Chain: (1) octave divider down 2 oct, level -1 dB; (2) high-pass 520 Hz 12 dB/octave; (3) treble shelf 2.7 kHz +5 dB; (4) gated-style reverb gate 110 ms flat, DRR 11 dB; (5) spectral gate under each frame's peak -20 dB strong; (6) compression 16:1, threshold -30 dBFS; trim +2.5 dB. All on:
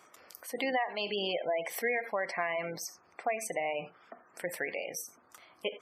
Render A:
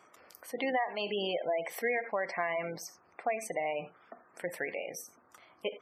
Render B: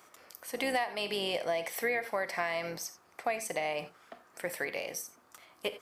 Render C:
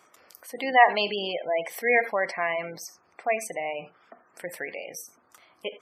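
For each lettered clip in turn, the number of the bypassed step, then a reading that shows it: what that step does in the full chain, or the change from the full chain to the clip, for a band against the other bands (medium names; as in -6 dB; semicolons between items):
3, momentary loudness spread change +3 LU; 5, crest factor change +2.0 dB; 6, mean gain reduction 3.5 dB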